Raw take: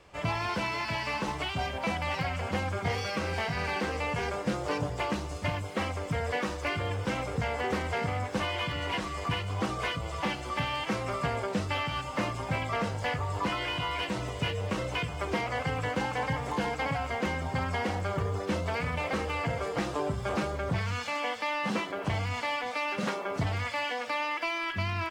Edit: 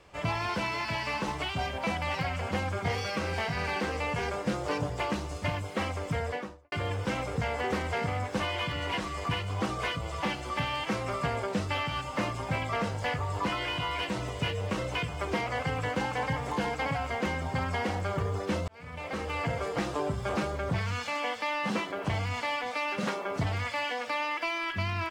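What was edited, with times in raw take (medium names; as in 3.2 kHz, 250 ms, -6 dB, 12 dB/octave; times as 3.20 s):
6.15–6.72 s: studio fade out
18.68–19.42 s: fade in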